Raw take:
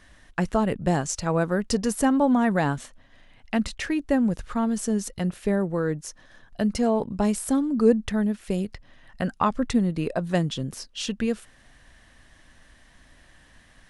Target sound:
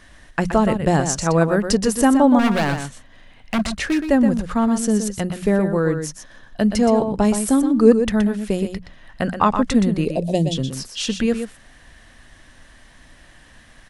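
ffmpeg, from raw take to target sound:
-filter_complex "[0:a]bandreject=f=60:t=h:w=6,bandreject=f=120:t=h:w=6,bandreject=f=180:t=h:w=6,asettb=1/sr,asplit=3[a][b][c];[a]atrim=end=2.394[d];[b]atrim=start=2.39:end=4.03,asetpts=PTS-STARTPTS,afade=t=in:d=0.004:c=qsin,afade=t=out:st=1.636:d=0.004:c=qsin,aeval=exprs='0.1*(abs(mod(val(0)/0.1+3,4)-2)-1)':c=same[e];[c]atrim=start=4.026[f];[d][e]acrossfade=d=0.004:c1=hsin:c2=qsin[g];[g][f]acrossfade=d=0.004:c1=qsin:c2=hsin,asettb=1/sr,asplit=3[h][i][j];[h]atrim=end=10.054[k];[i]atrim=start=10.05:end=10.55,asetpts=PTS-STARTPTS,afade=t=in:d=0.004:c=qsin,afade=t=out:st=0.496:d=0.004:c=qsin,asuperstop=centerf=1400:order=4:qfactor=0.64[l];[j]atrim=start=10.546[m];[k][l]acrossfade=d=0.004:c1=hsin:c2=qsin[n];[n][m]acrossfade=d=0.004:c1=qsin:c2=hsin,aecho=1:1:122:0.398,volume=6dB"

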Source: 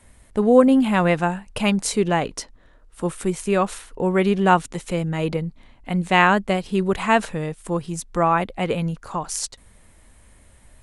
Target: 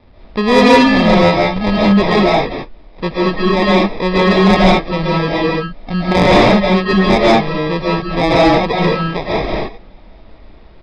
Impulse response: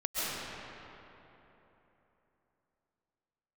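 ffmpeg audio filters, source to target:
-filter_complex "[0:a]acrusher=samples=30:mix=1:aa=0.000001[a];[1:a]atrim=start_sample=2205,afade=t=out:st=0.28:d=0.01,atrim=end_sample=12789[b];[a][b]afir=irnorm=-1:irlink=0,aresample=11025,aresample=44100,acontrast=86,volume=-1dB"

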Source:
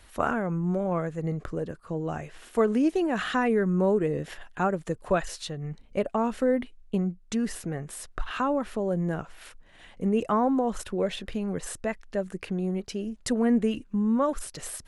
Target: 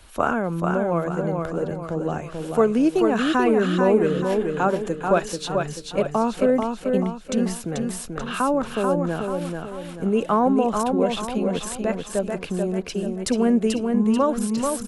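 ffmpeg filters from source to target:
-filter_complex "[0:a]equalizer=f=1.9k:w=7.7:g=-9.5,acrossover=split=180|2300[a][b][c];[a]acompressor=threshold=-42dB:ratio=6[d];[d][b][c]amix=inputs=3:normalize=0,aecho=1:1:437|874|1311|1748|2185:0.596|0.256|0.11|0.0474|0.0204,volume=5dB"

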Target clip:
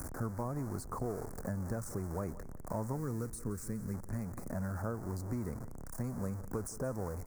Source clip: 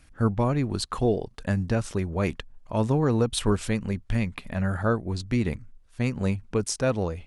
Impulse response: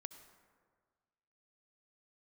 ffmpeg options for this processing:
-filter_complex "[0:a]aeval=exprs='val(0)+0.5*0.0422*sgn(val(0))':c=same,asettb=1/sr,asplit=3[a][b][c];[a]atrim=end=2.964[d];[b]atrim=start=2.96:end=3.94,asetpts=PTS-STARTPTS,afade=t=in:d=0.004:c=qsin,afade=t=out:st=0.976:d=0.004:c=qsin,equalizer=f=790:t=o:w=1.1:g=-13.5[e];[c]atrim=start=3.936[f];[d][e]acrossfade=d=0.004:c1=hsin:c2=qsin[g];[g][f]acrossfade=d=0.004:c1=qsin:c2=hsin,acrossover=split=89|910[h][i][j];[h]acompressor=threshold=-43dB:ratio=4[k];[i]acompressor=threshold=-33dB:ratio=4[l];[j]acompressor=threshold=-38dB:ratio=4[m];[k][l][m]amix=inputs=3:normalize=0,asuperstop=centerf=3100:order=4:qfactor=0.54,aecho=1:1:176|352|528:0.141|0.0381|0.0103,volume=-4.5dB"

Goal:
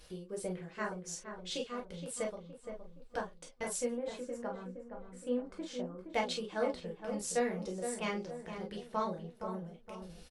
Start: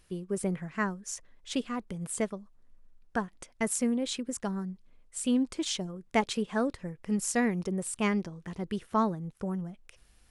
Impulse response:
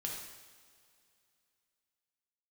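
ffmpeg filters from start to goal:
-filter_complex "[0:a]acompressor=mode=upward:threshold=-34dB:ratio=2.5,asettb=1/sr,asplit=3[a][b][c];[a]atrim=end=3.944[d];[b]atrim=start=3.94:end=5.98,asetpts=PTS-STARTPTS,afade=t=in:d=0.004:c=qsin,afade=t=out:st=2.036:d=0.004:c=qsin,highshelf=f=2.4k:t=q:w=1.5:g=-12.5[e];[c]atrim=start=5.976[f];[d][e]acrossfade=d=0.004:c1=hsin:c2=qsin[g];[g][f]acrossfade=d=0.004:c1=qsin:c2=hsin,agate=range=-11dB:threshold=-48dB:ratio=16:detection=peak,equalizer=f=250:t=o:w=1:g=-9,equalizer=f=500:t=o:w=1:g=9,equalizer=f=4k:t=o:w=1:g=8,asplit=2[h][i];[i]adelay=468,lowpass=f=1.4k:p=1,volume=-7dB,asplit=2[j][k];[k]adelay=468,lowpass=f=1.4k:p=1,volume=0.48,asplit=2[l][m];[m]adelay=468,lowpass=f=1.4k:p=1,volume=0.48,asplit=2[n][o];[o]adelay=468,lowpass=f=1.4k:p=1,volume=0.48,asplit=2[p][q];[q]adelay=468,lowpass=f=1.4k:p=1,volume=0.48,asplit=2[r][s];[s]adelay=468,lowpass=f=1.4k:p=1,volume=0.48[t];[h][j][l][n][p][r][t]amix=inputs=7:normalize=0[u];[1:a]atrim=start_sample=2205,atrim=end_sample=4410,asetrate=79380,aresample=44100[v];[u][v]afir=irnorm=-1:irlink=0,volume=-2.5dB"

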